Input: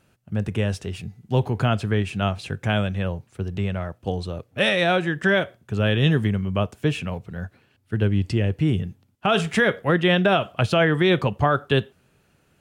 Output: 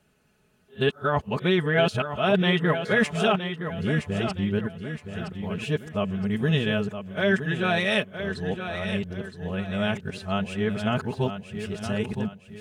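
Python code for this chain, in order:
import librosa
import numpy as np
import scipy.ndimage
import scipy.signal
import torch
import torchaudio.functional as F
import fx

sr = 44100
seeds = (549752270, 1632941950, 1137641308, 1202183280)

p1 = x[::-1].copy()
p2 = p1 + 0.52 * np.pad(p1, (int(4.7 * sr / 1000.0), 0))[:len(p1)]
p3 = p2 + fx.echo_feedback(p2, sr, ms=967, feedback_pct=36, wet_db=-9.0, dry=0)
y = F.gain(torch.from_numpy(p3), -4.5).numpy()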